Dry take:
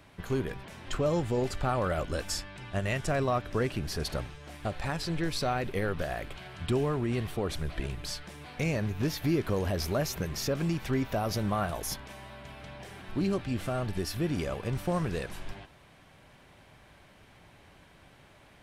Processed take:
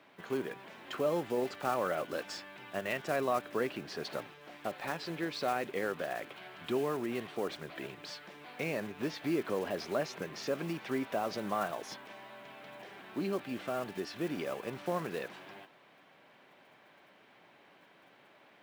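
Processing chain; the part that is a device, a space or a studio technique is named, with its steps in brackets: high-pass 120 Hz 12 dB/octave; early digital voice recorder (band-pass 260–3800 Hz; block-companded coder 5-bit); trim -2 dB

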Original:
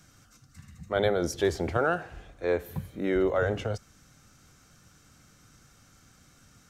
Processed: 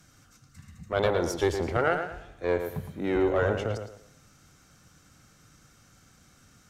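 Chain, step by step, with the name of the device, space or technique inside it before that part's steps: rockabilly slapback (valve stage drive 15 dB, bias 0.7; tape echo 111 ms, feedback 33%, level -6 dB, low-pass 3.3 kHz); trim +3.5 dB

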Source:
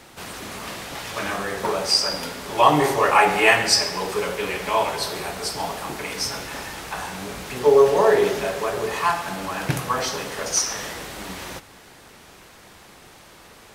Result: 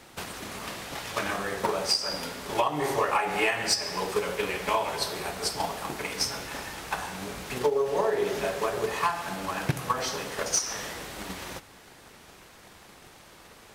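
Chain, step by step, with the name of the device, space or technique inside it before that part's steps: drum-bus smash (transient shaper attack +8 dB, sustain 0 dB; compression 12:1, threshold -16 dBFS, peak gain reduction 13 dB; saturation -7.5 dBFS, distortion -25 dB); trim -4.5 dB

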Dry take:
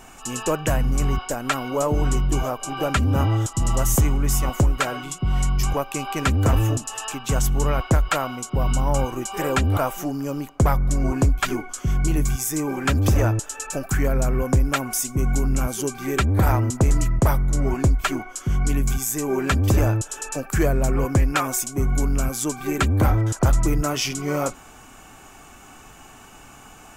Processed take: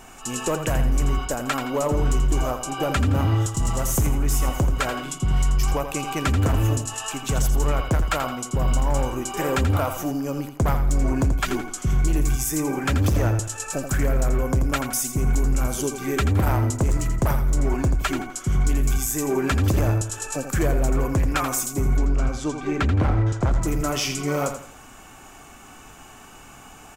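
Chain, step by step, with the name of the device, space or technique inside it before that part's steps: 21.97–23.61 s: distance through air 130 m; limiter into clipper (peak limiter -14 dBFS, peak gain reduction 2.5 dB; hard clipper -16.5 dBFS, distortion -21 dB); feedback delay 84 ms, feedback 33%, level -9 dB

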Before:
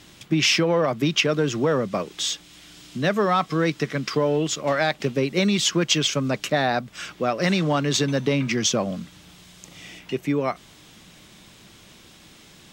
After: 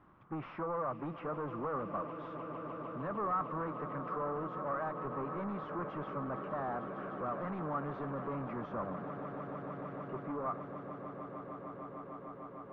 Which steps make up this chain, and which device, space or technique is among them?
echo with a slow build-up 151 ms, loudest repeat 8, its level -17.5 dB; overdriven synthesiser ladder filter (saturation -23 dBFS, distortion -8 dB; four-pole ladder low-pass 1.3 kHz, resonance 65%); trim -2 dB

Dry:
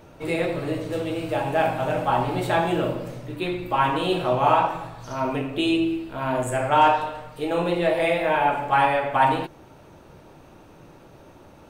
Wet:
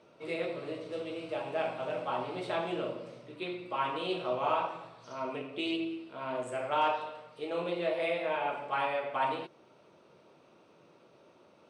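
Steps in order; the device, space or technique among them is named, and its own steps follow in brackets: full-range speaker at full volume (loudspeaker Doppler distortion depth 0.11 ms; cabinet simulation 250–7900 Hz, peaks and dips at 290 Hz -6 dB, 820 Hz -7 dB, 1.7 kHz -7 dB, 6.9 kHz -10 dB); trim -8 dB

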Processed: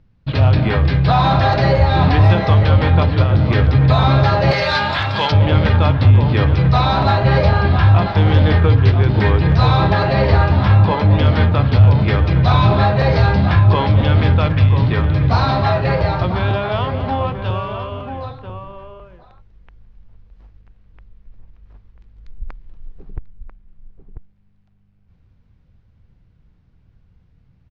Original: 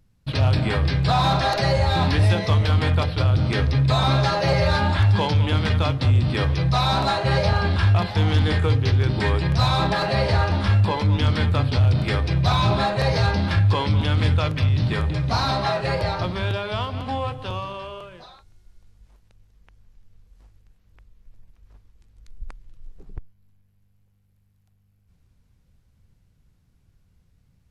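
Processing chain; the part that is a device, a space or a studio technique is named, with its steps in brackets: shout across a valley (distance through air 230 m; echo from a far wall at 170 m, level -7 dB); 4.51–5.32 s: tilt EQ +4 dB/octave; trim +6.5 dB

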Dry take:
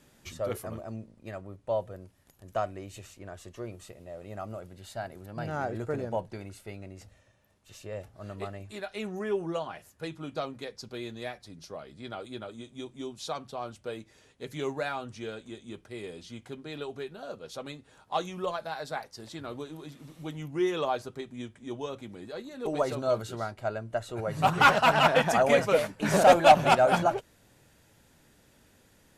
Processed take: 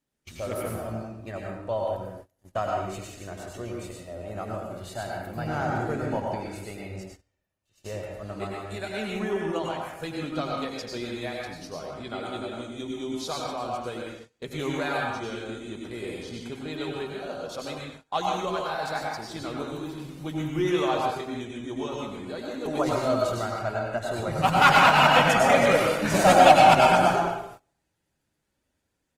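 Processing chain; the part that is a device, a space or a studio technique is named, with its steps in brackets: dynamic bell 480 Hz, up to -4 dB, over -37 dBFS, Q 1.1; speakerphone in a meeting room (reverberation RT60 0.85 s, pre-delay 87 ms, DRR -1.5 dB; speakerphone echo 100 ms, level -24 dB; level rider gain up to 3 dB; gate -43 dBFS, range -23 dB; Opus 24 kbps 48 kHz)

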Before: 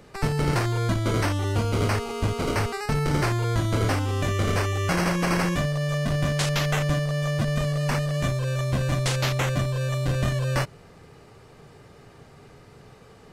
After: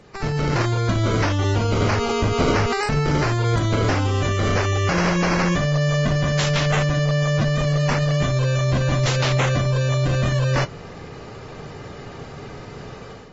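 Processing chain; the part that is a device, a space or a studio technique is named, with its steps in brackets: low-bitrate web radio (level rider gain up to 11 dB; peak limiter -14 dBFS, peak gain reduction 11 dB; trim +1 dB; AAC 24 kbps 32 kHz)

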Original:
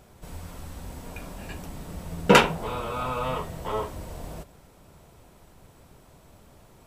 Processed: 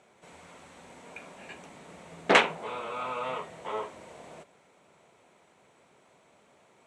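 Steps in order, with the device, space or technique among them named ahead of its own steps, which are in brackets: full-range speaker at full volume (loudspeaker Doppler distortion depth 0.74 ms; cabinet simulation 280–8400 Hz, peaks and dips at 300 Hz -4 dB, 2.2 kHz +6 dB, 5 kHz -8 dB); trim -4 dB

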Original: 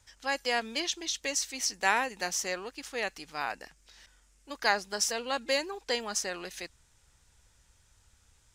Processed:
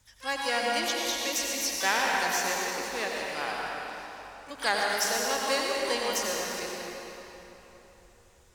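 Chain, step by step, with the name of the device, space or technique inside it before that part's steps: shimmer-style reverb (harmony voices +12 st -9 dB; reverberation RT60 3.8 s, pre-delay 79 ms, DRR -2.5 dB); trim -1.5 dB

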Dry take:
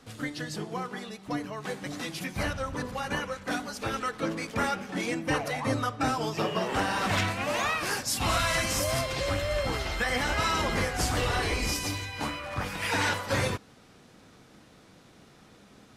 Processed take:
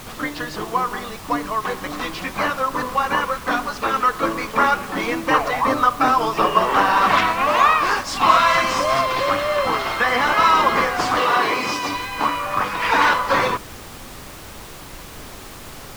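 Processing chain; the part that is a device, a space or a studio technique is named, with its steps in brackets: horn gramophone (band-pass 240–4300 Hz; peaking EQ 1.1 kHz +12 dB 0.52 oct; wow and flutter 24 cents; pink noise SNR 17 dB); 11.19–11.93 s: high-pass 150 Hz -> 70 Hz 24 dB/octave; trim +8 dB

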